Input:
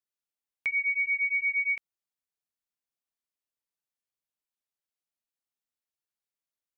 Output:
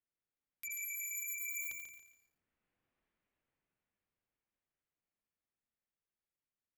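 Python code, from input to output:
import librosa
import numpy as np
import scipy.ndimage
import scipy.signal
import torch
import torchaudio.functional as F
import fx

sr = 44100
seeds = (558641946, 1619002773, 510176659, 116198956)

y = fx.doppler_pass(x, sr, speed_mps=13, closest_m=7.6, pass_at_s=2.91)
y = scipy.signal.sosfilt(scipy.signal.butter(4, 2300.0, 'lowpass', fs=sr, output='sos'), y)
y = fx.peak_eq(y, sr, hz=1100.0, db=-9.0, octaves=3.0)
y = fx.hum_notches(y, sr, base_hz=60, count=4)
y = fx.fold_sine(y, sr, drive_db=7, ceiling_db=-48.5)
y = fx.echo_feedback(y, sr, ms=87, feedback_pct=51, wet_db=-9.0)
y = fx.echo_crushed(y, sr, ms=140, feedback_pct=35, bits=14, wet_db=-7.5)
y = F.gain(torch.from_numpy(y), 9.0).numpy()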